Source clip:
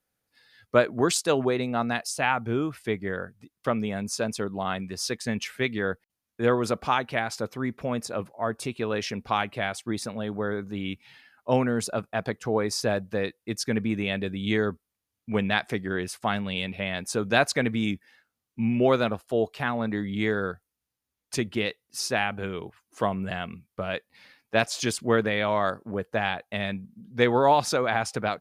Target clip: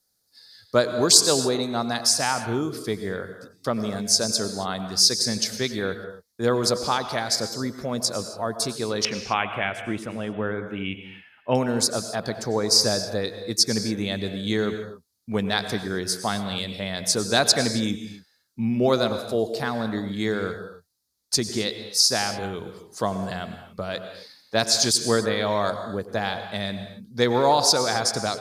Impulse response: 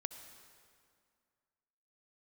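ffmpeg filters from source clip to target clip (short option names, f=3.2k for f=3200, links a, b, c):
-filter_complex "[0:a]asetnsamples=n=441:p=0,asendcmd='9.05 highshelf g -7;11.55 highshelf g 8',highshelf=f=3.5k:t=q:w=3:g=9[a];[1:a]atrim=start_sample=2205,afade=t=out:st=0.25:d=0.01,atrim=end_sample=11466,asetrate=31311,aresample=44100[b];[a][b]afir=irnorm=-1:irlink=0,volume=1.5dB"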